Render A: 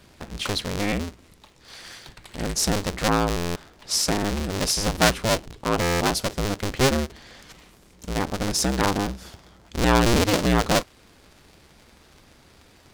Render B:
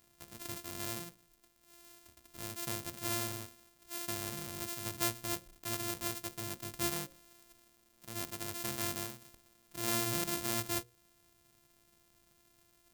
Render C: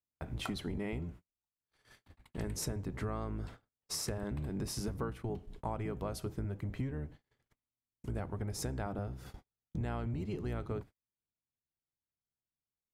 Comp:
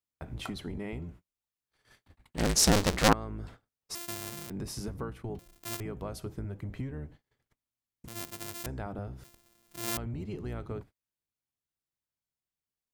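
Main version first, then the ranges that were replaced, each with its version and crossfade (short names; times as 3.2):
C
2.37–3.13 from A
3.95–4.5 from B
5.39–5.8 from B
8.08–8.66 from B
9.24–9.97 from B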